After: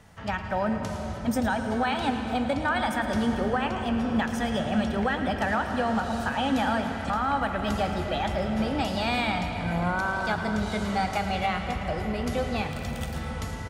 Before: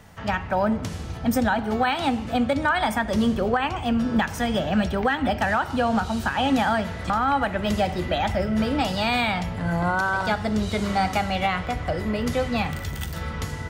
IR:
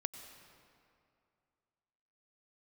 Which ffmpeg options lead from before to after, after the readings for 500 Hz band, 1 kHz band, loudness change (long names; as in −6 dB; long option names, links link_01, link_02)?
−3.5 dB, −3.5 dB, −3.5 dB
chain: -filter_complex "[0:a]aecho=1:1:110:0.224[link_01];[1:a]atrim=start_sample=2205,asetrate=23814,aresample=44100[link_02];[link_01][link_02]afir=irnorm=-1:irlink=0,volume=-6.5dB"